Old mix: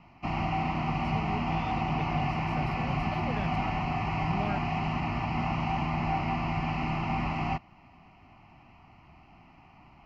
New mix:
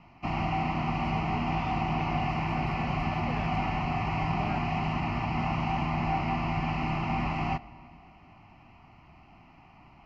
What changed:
speech -4.5 dB; reverb: on, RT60 2.9 s

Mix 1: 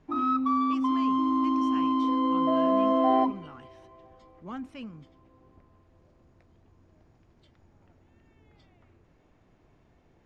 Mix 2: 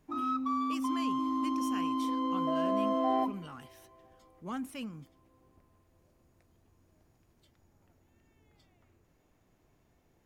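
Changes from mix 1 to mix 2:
background -7.0 dB; master: remove distance through air 140 m

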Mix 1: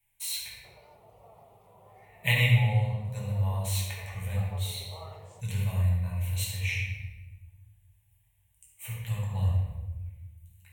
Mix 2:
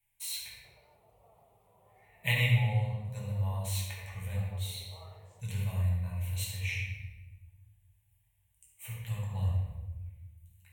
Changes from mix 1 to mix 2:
speech -4.0 dB; background -8.5 dB

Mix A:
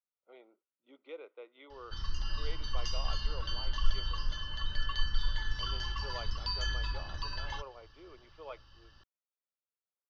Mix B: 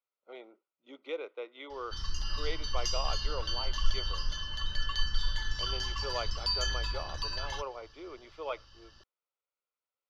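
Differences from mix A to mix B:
speech +8.0 dB; master: remove distance through air 150 m

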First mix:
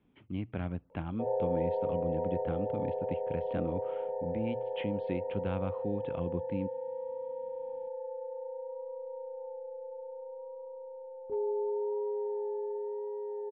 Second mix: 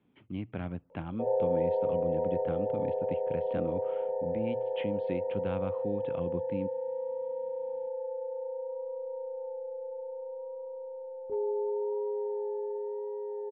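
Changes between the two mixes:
speech: add high-pass 89 Hz; background: add peaking EQ 550 Hz +4.5 dB 0.39 oct

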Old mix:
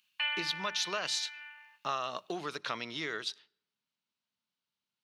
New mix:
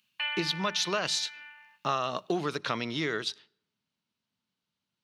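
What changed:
speech +3.5 dB; master: add bass shelf 390 Hz +10 dB

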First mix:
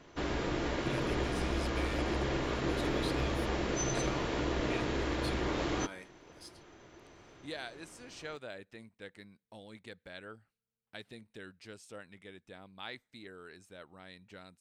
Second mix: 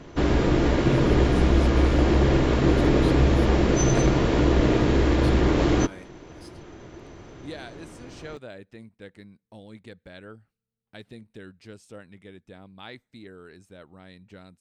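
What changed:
background +7.0 dB; master: add bass shelf 470 Hz +9.5 dB

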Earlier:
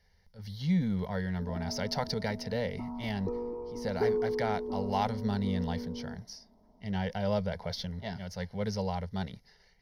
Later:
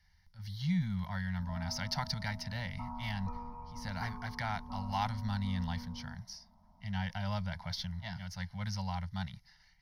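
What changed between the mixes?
background +5.5 dB; master: add Chebyshev band-stop 150–980 Hz, order 2

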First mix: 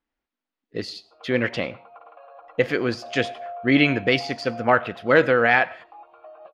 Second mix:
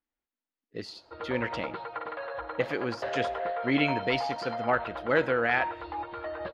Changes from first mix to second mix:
speech -8.5 dB; background: remove vowel filter a

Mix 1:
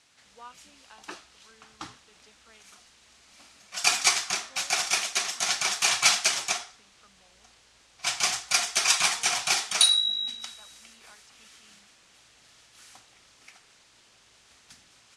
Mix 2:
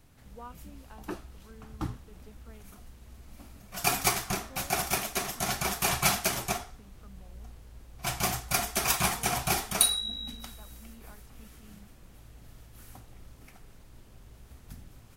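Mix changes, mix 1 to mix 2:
background: remove distance through air 58 m; master: remove frequency weighting ITU-R 468

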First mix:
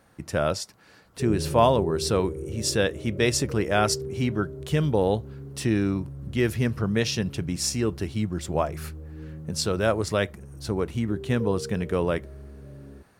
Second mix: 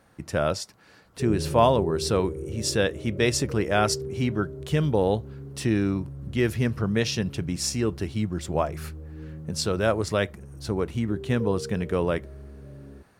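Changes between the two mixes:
speech: add treble shelf 6.9 kHz -10 dB; master: add treble shelf 6.4 kHz +7 dB

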